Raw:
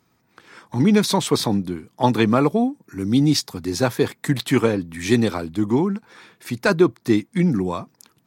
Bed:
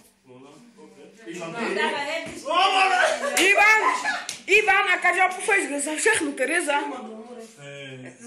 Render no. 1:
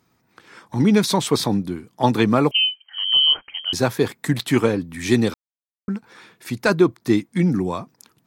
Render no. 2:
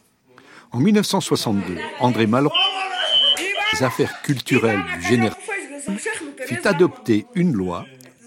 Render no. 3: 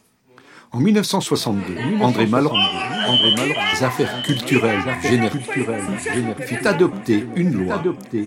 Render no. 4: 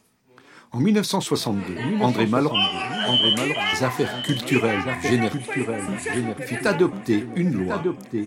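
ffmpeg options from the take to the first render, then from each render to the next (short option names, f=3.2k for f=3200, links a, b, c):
-filter_complex "[0:a]asettb=1/sr,asplit=3[a][b][c];[a]atrim=end=2.514[d];[b]atrim=start=2.51:end=3.73,asetpts=PTS-STARTPTS,afade=t=in:d=0.004:c=qsin,afade=t=out:st=1.216:d=0.004:c=qsin,lowpass=f=2.8k:t=q:w=0.5098,lowpass=f=2.8k:t=q:w=0.6013,lowpass=f=2.8k:t=q:w=0.9,lowpass=f=2.8k:t=q:w=2.563,afreqshift=-3300[e];[c]atrim=start=3.726[f];[d][e]acrossfade=d=0.004:c1=hsin:c2=qsin[g];[g][f]acrossfade=d=0.004:c1=qsin:c2=hsin,asplit=3[h][i][j];[h]atrim=end=5.34,asetpts=PTS-STARTPTS,afade=t=out:st=5.336:d=0.004:c=hsin[k];[i]atrim=start=5.34:end=5.88,asetpts=PTS-STARTPTS,volume=0[l];[j]atrim=start=5.88,asetpts=PTS-STARTPTS,afade=t=in:d=0.004:c=hsin[m];[k][l][m]concat=n=3:v=0:a=1"
-filter_complex "[1:a]volume=-6dB[a];[0:a][a]amix=inputs=2:normalize=0"
-filter_complex "[0:a]asplit=2[a][b];[b]adelay=32,volume=-13.5dB[c];[a][c]amix=inputs=2:normalize=0,asplit=2[d][e];[e]adelay=1047,lowpass=f=1.3k:p=1,volume=-5dB,asplit=2[f][g];[g]adelay=1047,lowpass=f=1.3k:p=1,volume=0.37,asplit=2[h][i];[i]adelay=1047,lowpass=f=1.3k:p=1,volume=0.37,asplit=2[j][k];[k]adelay=1047,lowpass=f=1.3k:p=1,volume=0.37,asplit=2[l][m];[m]adelay=1047,lowpass=f=1.3k:p=1,volume=0.37[n];[f][h][j][l][n]amix=inputs=5:normalize=0[o];[d][o]amix=inputs=2:normalize=0"
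-af "volume=-3.5dB"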